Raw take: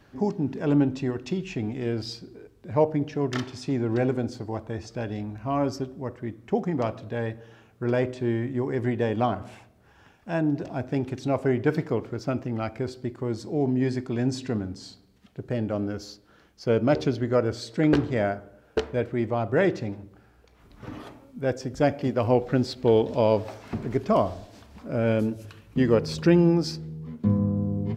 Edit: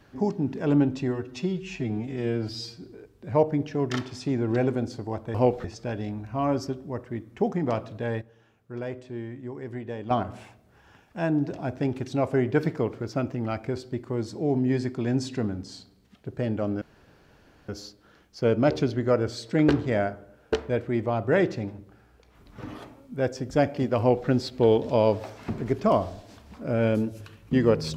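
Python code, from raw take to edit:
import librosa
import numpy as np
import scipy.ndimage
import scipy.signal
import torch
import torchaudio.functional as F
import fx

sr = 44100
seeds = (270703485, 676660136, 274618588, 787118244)

y = fx.edit(x, sr, fx.stretch_span(start_s=1.08, length_s=1.17, factor=1.5),
    fx.clip_gain(start_s=7.33, length_s=1.89, db=-9.5),
    fx.insert_room_tone(at_s=15.93, length_s=0.87),
    fx.duplicate(start_s=22.23, length_s=0.3, to_s=4.76), tone=tone)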